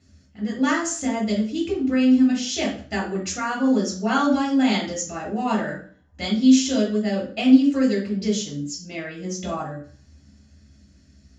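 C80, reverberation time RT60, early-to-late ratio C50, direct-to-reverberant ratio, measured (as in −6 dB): 12.0 dB, 0.45 s, 6.5 dB, −2.0 dB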